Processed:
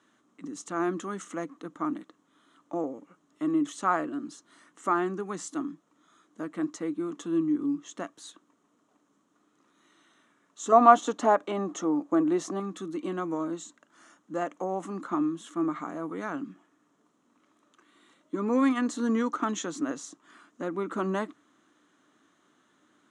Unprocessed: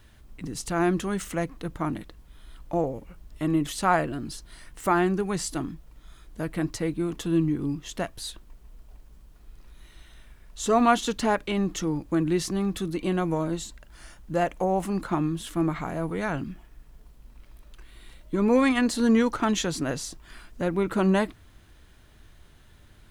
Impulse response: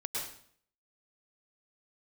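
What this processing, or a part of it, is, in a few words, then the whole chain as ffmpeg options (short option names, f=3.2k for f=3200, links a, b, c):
television speaker: -filter_complex "[0:a]asettb=1/sr,asplit=3[a][b][c];[a]atrim=end=10.724[d];[b]atrim=start=10.72:end=12.6,asetpts=PTS-STARTPTS,afade=t=in:d=0.004:c=qsin,afade=t=out:st=1.876:d=0.004:c=qsin,equalizer=f=680:w=1.2:g=12[e];[c]atrim=start=12.596[f];[d][e]acrossfade=d=0.004:c1=hsin:c2=qsin[g];[g][f]acrossfade=d=0.004:c1=qsin:c2=hsin,highpass=f=200:w=0.5412,highpass=f=200:w=1.3066,equalizer=f=290:t=q:w=4:g=10,equalizer=f=1.2k:t=q:w=4:g=10,equalizer=f=2.5k:t=q:w=4:g=-5,equalizer=f=4.7k:t=q:w=4:g=-9,equalizer=f=6.7k:t=q:w=4:g=6,lowpass=f=8.4k:w=0.5412,lowpass=f=8.4k:w=1.3066,volume=-7.5dB"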